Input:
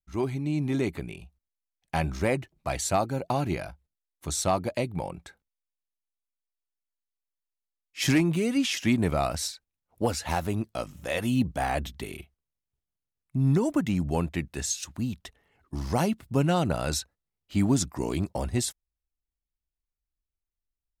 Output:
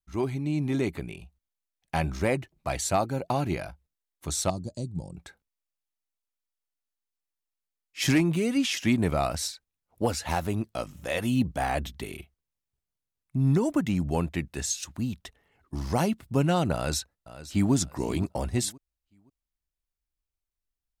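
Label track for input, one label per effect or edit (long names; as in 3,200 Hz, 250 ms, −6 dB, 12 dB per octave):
4.500000	5.170000	drawn EQ curve 170 Hz 0 dB, 410 Hz −9 dB, 2,300 Hz −30 dB, 4,200 Hz −6 dB, 7,700 Hz +5 dB, 14,000 Hz −27 dB
16.740000	17.730000	delay throw 520 ms, feedback 25%, level −14.5 dB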